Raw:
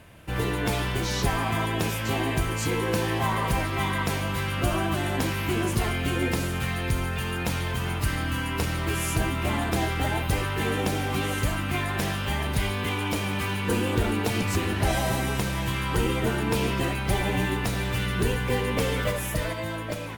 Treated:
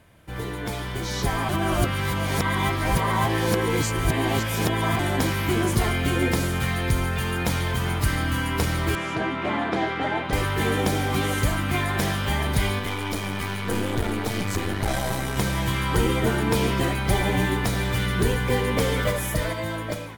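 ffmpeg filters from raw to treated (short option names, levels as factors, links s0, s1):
-filter_complex "[0:a]asettb=1/sr,asplit=3[s0][s1][s2];[s0]atrim=end=8.954[s3];[s1]atrim=start=8.95:end=10.33,asetpts=PTS-STARTPTS,afade=t=in:d=0.004:c=qsin,afade=t=out:st=1.376:d=0.004:c=qsin,highpass=210,lowpass=3000[s4];[s2]atrim=start=10.326[s5];[s3][s4]acrossfade=d=0.004:c1=hsin:c2=qsin[s6];[s6][s5]acrossfade=d=0.004:c1=qsin:c2=hsin,asettb=1/sr,asplit=3[s7][s8][s9];[s7]atrim=end=12.794[s10];[s8]atrim=start=12.79:end=15.37,asetpts=PTS-STARTPTS,afade=t=in:d=0.004:c=qsin,afade=t=out:st=2.576:d=0.004:c=qsin,aeval=exprs='(tanh(12.6*val(0)+0.75)-tanh(0.75))/12.6':c=same[s11];[s9]atrim=start=15.366[s12];[s10][s11]acrossfade=d=0.004:c1=hsin:c2=qsin[s13];[s13][s12]acrossfade=d=0.004:c1=qsin:c2=hsin,asplit=3[s14][s15][s16];[s14]atrim=end=1.492[s17];[s15]atrim=start=1.488:end=4.992,asetpts=PTS-STARTPTS,areverse[s18];[s16]atrim=start=4.988[s19];[s17][s18]acrossfade=d=0.004:c1=hsin:c2=hsin[s20];[s20][s19]acrossfade=d=0.004:c1=hsin:c2=hsin,bandreject=f=2700:w=10,dynaudnorm=f=830:g=3:m=2.82,volume=0.562"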